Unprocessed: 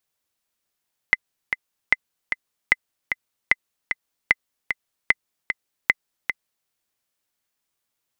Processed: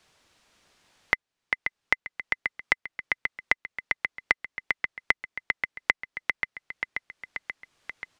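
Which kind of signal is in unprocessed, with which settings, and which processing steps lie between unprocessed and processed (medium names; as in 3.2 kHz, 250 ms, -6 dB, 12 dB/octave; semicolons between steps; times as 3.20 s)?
metronome 151 bpm, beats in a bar 2, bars 7, 2.04 kHz, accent 7.5 dB -1.5 dBFS
distance through air 88 m; on a send: feedback delay 533 ms, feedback 40%, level -10.5 dB; on the sum: three bands compressed up and down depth 70%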